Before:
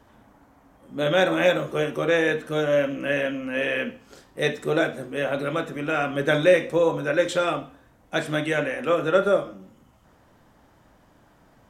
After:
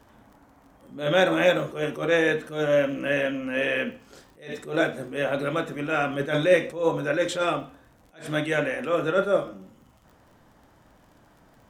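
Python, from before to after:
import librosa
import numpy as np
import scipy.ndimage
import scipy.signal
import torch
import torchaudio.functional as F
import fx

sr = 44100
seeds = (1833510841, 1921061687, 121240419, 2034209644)

y = fx.dmg_crackle(x, sr, seeds[0], per_s=43.0, level_db=-46.0)
y = fx.attack_slew(y, sr, db_per_s=140.0)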